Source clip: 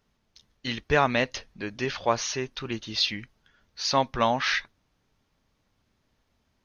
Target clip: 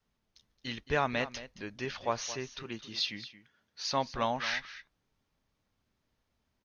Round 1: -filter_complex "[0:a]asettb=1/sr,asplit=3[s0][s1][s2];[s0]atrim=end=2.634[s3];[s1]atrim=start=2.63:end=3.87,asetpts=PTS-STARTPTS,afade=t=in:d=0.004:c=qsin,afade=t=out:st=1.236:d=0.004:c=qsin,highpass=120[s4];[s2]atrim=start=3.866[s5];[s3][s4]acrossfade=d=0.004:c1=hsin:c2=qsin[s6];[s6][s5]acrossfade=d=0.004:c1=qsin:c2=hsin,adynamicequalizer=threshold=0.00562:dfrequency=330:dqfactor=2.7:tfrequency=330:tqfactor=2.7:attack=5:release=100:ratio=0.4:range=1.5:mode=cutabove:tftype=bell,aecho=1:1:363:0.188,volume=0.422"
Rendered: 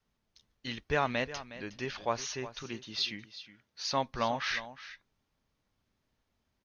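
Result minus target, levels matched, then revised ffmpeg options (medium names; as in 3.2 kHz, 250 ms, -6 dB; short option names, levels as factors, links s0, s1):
echo 142 ms late
-filter_complex "[0:a]asettb=1/sr,asplit=3[s0][s1][s2];[s0]atrim=end=2.634[s3];[s1]atrim=start=2.63:end=3.87,asetpts=PTS-STARTPTS,afade=t=in:d=0.004:c=qsin,afade=t=out:st=1.236:d=0.004:c=qsin,highpass=120[s4];[s2]atrim=start=3.866[s5];[s3][s4]acrossfade=d=0.004:c1=hsin:c2=qsin[s6];[s6][s5]acrossfade=d=0.004:c1=qsin:c2=hsin,adynamicequalizer=threshold=0.00562:dfrequency=330:dqfactor=2.7:tfrequency=330:tqfactor=2.7:attack=5:release=100:ratio=0.4:range=1.5:mode=cutabove:tftype=bell,aecho=1:1:221:0.188,volume=0.422"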